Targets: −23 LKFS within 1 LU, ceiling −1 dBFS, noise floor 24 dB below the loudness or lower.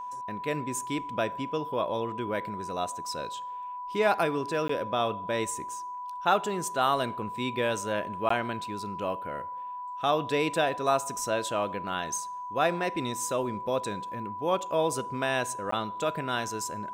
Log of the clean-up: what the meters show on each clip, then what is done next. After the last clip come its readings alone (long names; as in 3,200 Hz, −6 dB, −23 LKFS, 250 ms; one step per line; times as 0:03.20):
number of dropouts 3; longest dropout 14 ms; interfering tone 990 Hz; level of the tone −35 dBFS; integrated loudness −30.0 LKFS; sample peak −11.0 dBFS; target loudness −23.0 LKFS
→ repair the gap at 0:04.68/0:08.29/0:15.71, 14 ms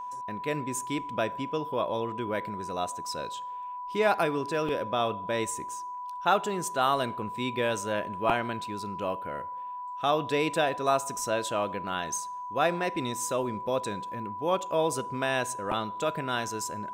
number of dropouts 0; interfering tone 990 Hz; level of the tone −35 dBFS
→ notch filter 990 Hz, Q 30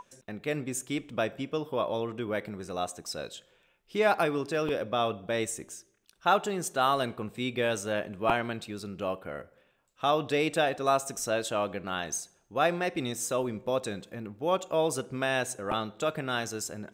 interfering tone none found; integrated loudness −30.5 LKFS; sample peak −10.5 dBFS; target loudness −23.0 LKFS
→ level +7.5 dB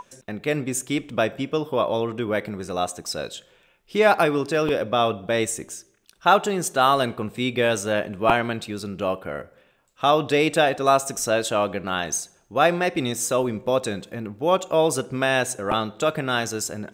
integrated loudness −23.0 LKFS; sample peak −3.0 dBFS; background noise floor −61 dBFS